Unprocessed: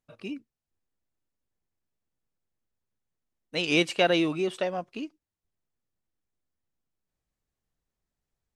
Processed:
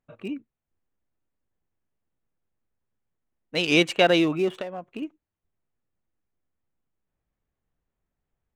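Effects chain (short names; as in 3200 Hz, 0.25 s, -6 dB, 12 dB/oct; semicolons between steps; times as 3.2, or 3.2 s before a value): Wiener smoothing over 9 samples; 4.5–5.02 compressor 6:1, threshold -35 dBFS, peak gain reduction 10.5 dB; gain +4 dB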